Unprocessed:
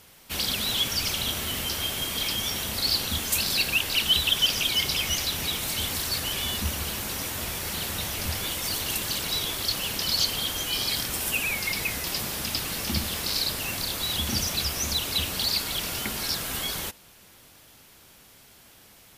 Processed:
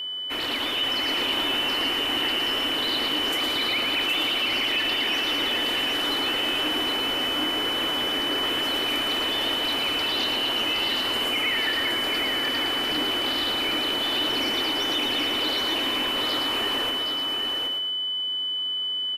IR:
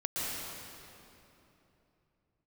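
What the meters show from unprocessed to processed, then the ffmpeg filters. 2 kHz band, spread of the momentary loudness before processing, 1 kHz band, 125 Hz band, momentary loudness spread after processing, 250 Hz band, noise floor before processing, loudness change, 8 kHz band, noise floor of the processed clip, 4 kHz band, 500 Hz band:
+5.0 dB, 6 LU, +7.5 dB, -11.0 dB, 2 LU, +6.0 dB, -53 dBFS, +2.5 dB, -11.5 dB, -28 dBFS, +5.5 dB, +7.5 dB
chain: -filter_complex "[0:a]acrossover=split=410 2900:gain=0.2 1 0.1[s0][s1][s2];[s0][s1][s2]amix=inputs=3:normalize=0,afreqshift=-380,alimiter=level_in=1.58:limit=0.0631:level=0:latency=1:release=15,volume=0.631,asplit=2[s3][s4];[s4]asplit=5[s5][s6][s7][s8][s9];[s5]adelay=112,afreqshift=89,volume=0.596[s10];[s6]adelay=224,afreqshift=178,volume=0.232[s11];[s7]adelay=336,afreqshift=267,volume=0.0902[s12];[s8]adelay=448,afreqshift=356,volume=0.0355[s13];[s9]adelay=560,afreqshift=445,volume=0.0138[s14];[s10][s11][s12][s13][s14]amix=inputs=5:normalize=0[s15];[s3][s15]amix=inputs=2:normalize=0,aeval=exprs='val(0)+0.0178*sin(2*PI*3000*n/s)':c=same,lowshelf=f=220:t=q:w=3:g=-6.5,asplit=2[s16][s17];[s17]aecho=0:1:769:0.596[s18];[s16][s18]amix=inputs=2:normalize=0,volume=2"

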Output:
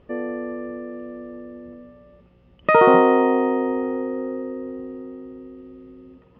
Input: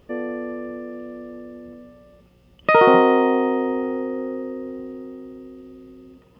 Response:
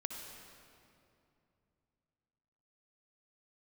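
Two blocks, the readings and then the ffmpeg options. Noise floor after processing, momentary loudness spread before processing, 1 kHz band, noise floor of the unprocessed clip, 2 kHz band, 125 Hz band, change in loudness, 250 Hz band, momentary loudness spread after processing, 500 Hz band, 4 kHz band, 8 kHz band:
-54 dBFS, 24 LU, 0.0 dB, -54 dBFS, -1.5 dB, 0.0 dB, 0.0 dB, 0.0 dB, 23 LU, 0.0 dB, -5.5 dB, no reading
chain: -af "lowpass=2500"

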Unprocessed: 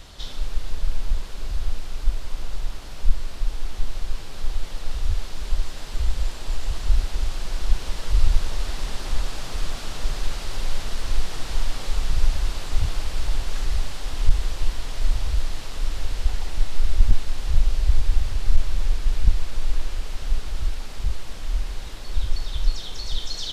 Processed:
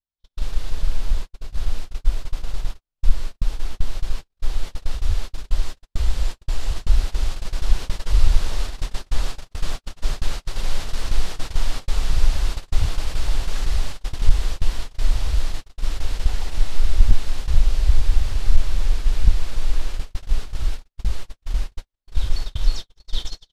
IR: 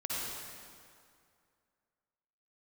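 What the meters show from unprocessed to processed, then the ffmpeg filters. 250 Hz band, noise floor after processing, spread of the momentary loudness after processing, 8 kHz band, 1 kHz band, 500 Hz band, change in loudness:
+1.5 dB, -77 dBFS, 10 LU, no reading, +1.0 dB, +1.0 dB, +2.0 dB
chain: -af "agate=range=0.00126:threshold=0.0794:ratio=16:detection=peak,volume=1.33"

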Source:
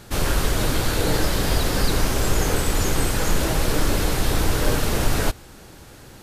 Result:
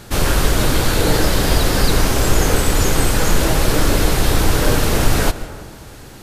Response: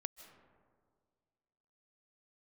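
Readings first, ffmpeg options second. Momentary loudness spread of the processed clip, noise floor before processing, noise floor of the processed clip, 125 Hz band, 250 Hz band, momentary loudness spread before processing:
3 LU, -44 dBFS, -38 dBFS, +5.5 dB, +5.5 dB, 1 LU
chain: -filter_complex "[0:a]asplit=2[s0][s1];[1:a]atrim=start_sample=2205,asetrate=48510,aresample=44100[s2];[s1][s2]afir=irnorm=-1:irlink=0,volume=2.99[s3];[s0][s3]amix=inputs=2:normalize=0,volume=0.668"

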